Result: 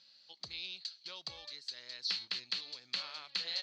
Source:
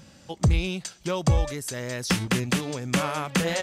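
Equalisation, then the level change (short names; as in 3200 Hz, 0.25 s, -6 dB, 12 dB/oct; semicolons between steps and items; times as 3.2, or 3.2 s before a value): band-pass 4300 Hz, Q 17; air absorption 170 m; +15.0 dB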